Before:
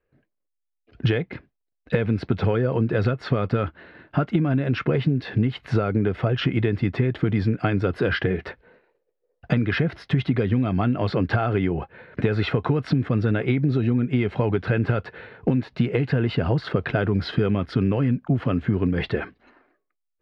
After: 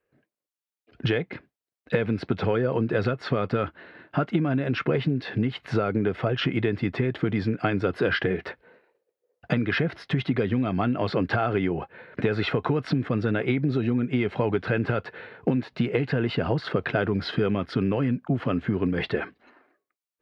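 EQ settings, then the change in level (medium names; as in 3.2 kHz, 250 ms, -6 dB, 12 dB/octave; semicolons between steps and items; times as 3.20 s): high-pass 200 Hz 6 dB/octave; 0.0 dB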